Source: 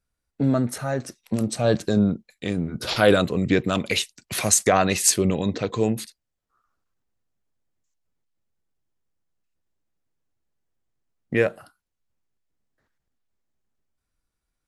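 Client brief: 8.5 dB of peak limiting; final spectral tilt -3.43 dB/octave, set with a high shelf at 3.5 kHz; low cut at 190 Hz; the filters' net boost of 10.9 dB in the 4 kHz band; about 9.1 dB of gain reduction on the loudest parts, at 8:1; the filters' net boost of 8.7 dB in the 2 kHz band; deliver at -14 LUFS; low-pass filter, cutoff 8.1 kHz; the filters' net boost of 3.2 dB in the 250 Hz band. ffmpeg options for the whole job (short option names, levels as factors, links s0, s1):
-af "highpass=190,lowpass=8100,equalizer=f=250:t=o:g=6,equalizer=f=2000:t=o:g=7.5,highshelf=f=3500:g=5.5,equalizer=f=4000:t=o:g=7.5,acompressor=threshold=0.141:ratio=8,volume=3.35,alimiter=limit=0.794:level=0:latency=1"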